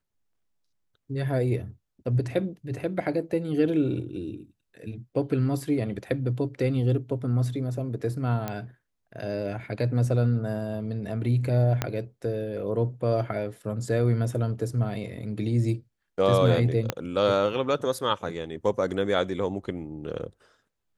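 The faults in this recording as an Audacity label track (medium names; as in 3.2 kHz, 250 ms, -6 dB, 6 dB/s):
8.480000	8.480000	pop -16 dBFS
11.820000	11.820000	pop -10 dBFS
16.900000	16.900000	pop -10 dBFS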